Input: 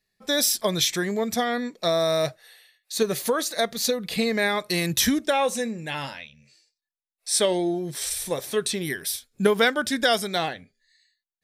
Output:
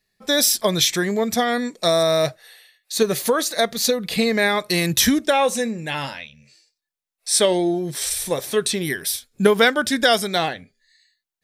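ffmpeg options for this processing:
ffmpeg -i in.wav -filter_complex "[0:a]asettb=1/sr,asplit=3[link_01][link_02][link_03];[link_01]atrim=end=1.484[link_04];[link_02]atrim=start=1.48:end=2.03,asetpts=PTS-STARTPTS,afade=type=in:duration=0.004:curve=qsin,afade=type=out:start_time=0.546:duration=0.004:curve=qsin,equalizer=frequency=8700:width=1.3:gain=10[link_05];[link_03]atrim=start=2.026[link_06];[link_04][link_05]acrossfade=duration=0.004:curve1=hsin:curve2=qsin[link_07];[link_07][link_06]acrossfade=duration=0.004:curve1=qsin:curve2=hsin,volume=4.5dB" out.wav

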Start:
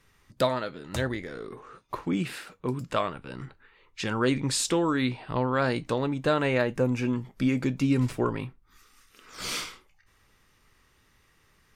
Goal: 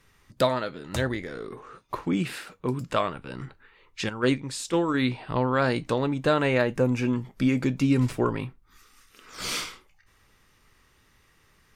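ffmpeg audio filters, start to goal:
ffmpeg -i in.wav -filter_complex "[0:a]asettb=1/sr,asplit=3[link_01][link_02][link_03];[link_01]atrim=end=4.094[link_04];[link_02]atrim=start=4.09:end=4.94,asetpts=PTS-STARTPTS,afade=type=in:duration=0.004:curve=qsin,afade=type=out:start_time=0.846:duration=0.004:curve=qsin,agate=range=-9dB:threshold=-24dB:ratio=16:detection=peak[link_05];[link_03]atrim=start=4.936[link_06];[link_04][link_05]acrossfade=duration=0.004:curve1=hsin:curve2=qsin[link_07];[link_07][link_06]acrossfade=duration=0.004:curve1=qsin:curve2=hsin,volume=2dB" out.wav

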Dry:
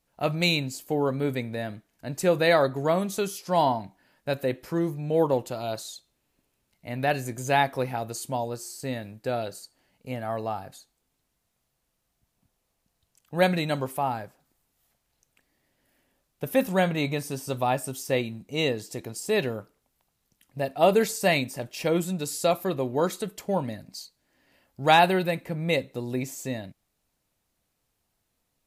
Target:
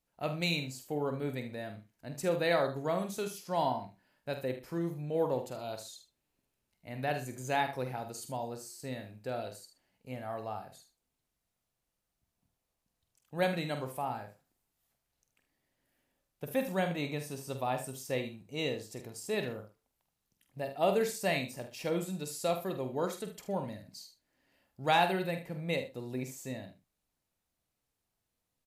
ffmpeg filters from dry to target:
ffmpeg -i in.wav -filter_complex "[0:a]asplit=2[link_01][link_02];[link_02]adelay=47,volume=-9dB[link_03];[link_01][link_03]amix=inputs=2:normalize=0,asplit=2[link_04][link_05];[link_05]aecho=0:1:76:0.251[link_06];[link_04][link_06]amix=inputs=2:normalize=0,volume=-9dB" out.wav

